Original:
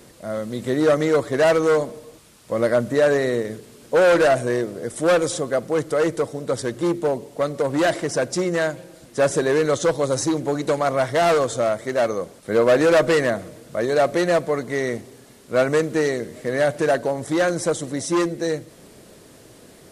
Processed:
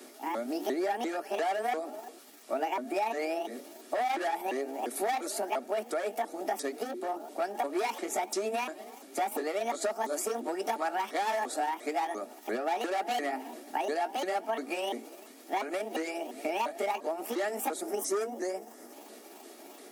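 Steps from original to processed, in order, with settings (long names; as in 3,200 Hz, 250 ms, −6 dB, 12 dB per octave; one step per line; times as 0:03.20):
pitch shifter swept by a sawtooth +8.5 semitones, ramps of 347 ms
Butterworth high-pass 230 Hz 72 dB per octave
downward compressor, threshold −28 dBFS, peak gain reduction 14.5 dB
notch comb filter 510 Hz
gain on a spectral selection 0:17.81–0:18.93, 2,200–4,800 Hz −8 dB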